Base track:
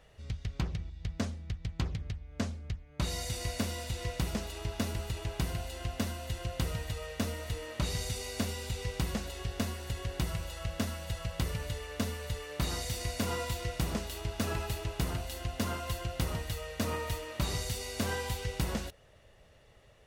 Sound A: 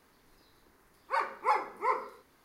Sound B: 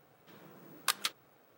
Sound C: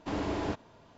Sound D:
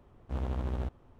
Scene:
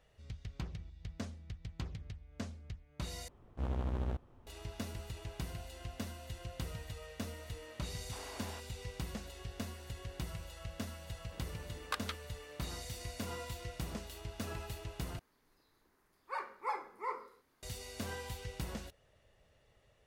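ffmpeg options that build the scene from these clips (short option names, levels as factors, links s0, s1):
-filter_complex "[0:a]volume=0.376[s0];[3:a]highpass=790[s1];[2:a]lowpass=f=1500:p=1[s2];[s0]asplit=3[s3][s4][s5];[s3]atrim=end=3.284[s6];[4:a]atrim=end=1.19,asetpts=PTS-STARTPTS,volume=0.75[s7];[s4]atrim=start=4.466:end=15.194[s8];[1:a]atrim=end=2.44,asetpts=PTS-STARTPTS,volume=0.335[s9];[s5]atrim=start=17.626[s10];[s1]atrim=end=0.97,asetpts=PTS-STARTPTS,volume=0.316,afade=t=in:d=0.004:c=hsin,afade=t=out:st=0.966:d=0.004:c=hsin,adelay=8050[s11];[s2]atrim=end=1.57,asetpts=PTS-STARTPTS,volume=0.891,afade=t=in:d=0.004:c=hsin,afade=t=out:st=1.566:d=0.004:c=hsin,adelay=11040[s12];[s6][s7]acrossfade=d=0.004:c1=hsin:c2=hsin[s13];[s13][s8]acrossfade=d=0.004:c1=hsin:c2=hsin[s14];[s14][s9]acrossfade=d=0.004:c1=hsin:c2=hsin[s15];[s15][s10]acrossfade=d=0.004:c1=hsin:c2=hsin[s16];[s16][s11][s12]amix=inputs=3:normalize=0"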